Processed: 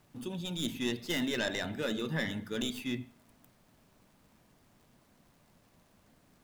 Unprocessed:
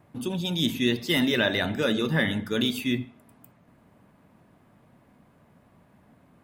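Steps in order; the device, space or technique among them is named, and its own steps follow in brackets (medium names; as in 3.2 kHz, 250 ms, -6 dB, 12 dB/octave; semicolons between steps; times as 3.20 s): record under a worn stylus (tracing distortion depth 0.089 ms; crackle; pink noise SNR 31 dB); trim -9 dB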